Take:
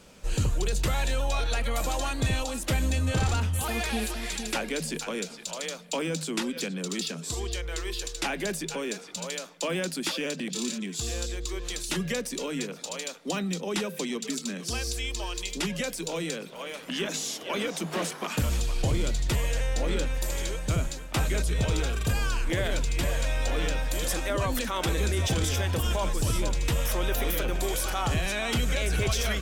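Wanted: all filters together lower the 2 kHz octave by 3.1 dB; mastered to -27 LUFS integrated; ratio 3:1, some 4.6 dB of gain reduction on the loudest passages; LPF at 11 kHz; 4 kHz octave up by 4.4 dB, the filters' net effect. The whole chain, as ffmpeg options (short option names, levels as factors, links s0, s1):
-af "lowpass=11000,equalizer=f=2000:t=o:g=-6.5,equalizer=f=4000:t=o:g=7.5,acompressor=threshold=0.0398:ratio=3,volume=1.78"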